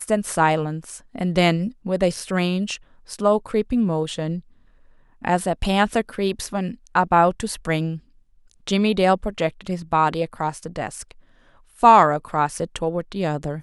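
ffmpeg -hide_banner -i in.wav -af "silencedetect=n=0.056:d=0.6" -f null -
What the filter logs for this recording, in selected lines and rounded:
silence_start: 4.38
silence_end: 5.25 | silence_duration: 0.87
silence_start: 7.95
silence_end: 8.68 | silence_duration: 0.72
silence_start: 11.11
silence_end: 11.83 | silence_duration: 0.72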